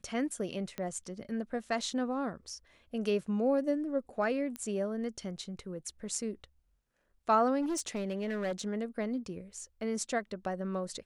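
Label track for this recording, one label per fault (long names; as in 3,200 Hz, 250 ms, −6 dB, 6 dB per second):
0.780000	0.780000	click −23 dBFS
4.560000	4.560000	click −23 dBFS
7.610000	8.680000	clipping −29.5 dBFS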